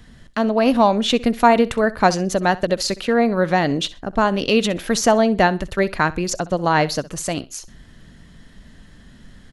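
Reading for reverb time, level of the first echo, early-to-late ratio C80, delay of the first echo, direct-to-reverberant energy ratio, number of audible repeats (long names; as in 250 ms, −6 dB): no reverb audible, −19.0 dB, no reverb audible, 64 ms, no reverb audible, 2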